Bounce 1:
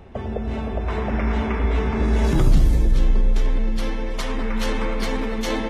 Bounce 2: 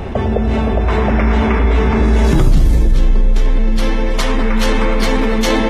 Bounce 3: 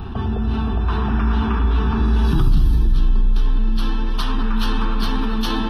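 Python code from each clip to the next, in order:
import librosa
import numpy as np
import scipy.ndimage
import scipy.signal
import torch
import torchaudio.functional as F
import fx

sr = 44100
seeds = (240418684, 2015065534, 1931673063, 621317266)

y1 = fx.env_flatten(x, sr, amount_pct=50)
y1 = F.gain(torch.from_numpy(y1), 3.5).numpy()
y2 = fx.fixed_phaser(y1, sr, hz=2100.0, stages=6)
y2 = F.gain(torch.from_numpy(y2), -4.0).numpy()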